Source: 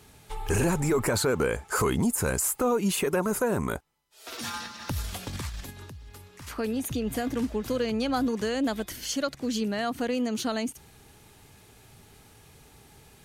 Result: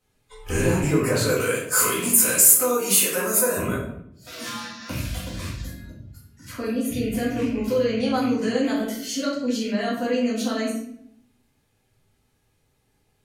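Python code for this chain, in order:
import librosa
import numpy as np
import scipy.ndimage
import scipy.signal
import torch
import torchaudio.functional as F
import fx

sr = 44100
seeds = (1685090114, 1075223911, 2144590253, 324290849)

y = fx.rattle_buzz(x, sr, strikes_db=-29.0, level_db=-27.0)
y = fx.riaa(y, sr, side='recording', at=(1.27, 3.57))
y = fx.noise_reduce_blind(y, sr, reduce_db=18)
y = fx.room_shoebox(y, sr, seeds[0], volume_m3=140.0, walls='mixed', distance_m=2.0)
y = F.gain(torch.from_numpy(y), -4.5).numpy()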